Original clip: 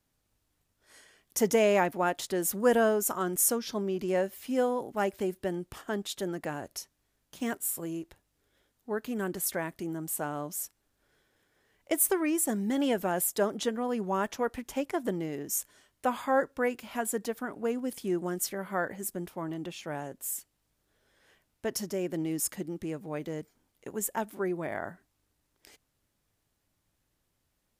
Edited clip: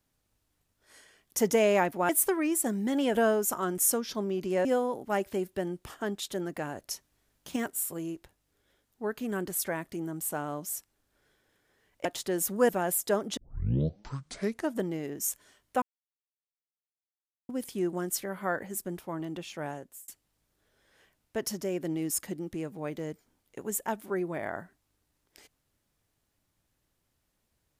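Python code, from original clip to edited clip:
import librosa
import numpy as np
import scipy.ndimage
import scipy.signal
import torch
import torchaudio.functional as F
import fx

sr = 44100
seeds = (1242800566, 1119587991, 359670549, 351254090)

y = fx.edit(x, sr, fx.swap(start_s=2.09, length_s=0.64, other_s=11.92, other_length_s=1.06),
    fx.cut(start_s=4.23, length_s=0.29),
    fx.clip_gain(start_s=6.78, length_s=0.65, db=3.5),
    fx.tape_start(start_s=13.66, length_s=1.44),
    fx.silence(start_s=16.11, length_s=1.67),
    fx.fade_out_span(start_s=20.0, length_s=0.37), tone=tone)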